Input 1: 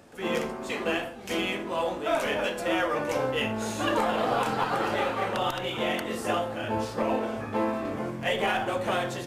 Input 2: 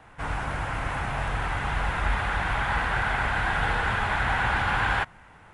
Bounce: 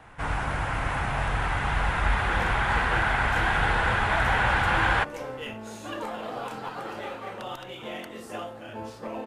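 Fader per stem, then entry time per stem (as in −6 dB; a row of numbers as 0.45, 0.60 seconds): −8.5, +1.5 decibels; 2.05, 0.00 seconds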